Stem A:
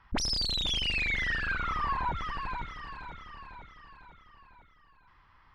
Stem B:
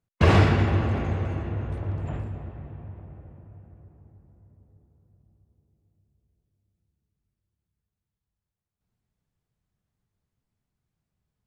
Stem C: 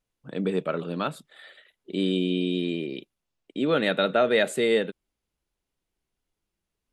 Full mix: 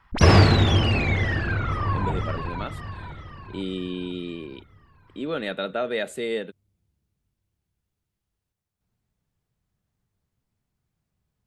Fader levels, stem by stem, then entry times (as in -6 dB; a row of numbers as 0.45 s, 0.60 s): +1.0 dB, +3.0 dB, -5.5 dB; 0.00 s, 0.00 s, 1.60 s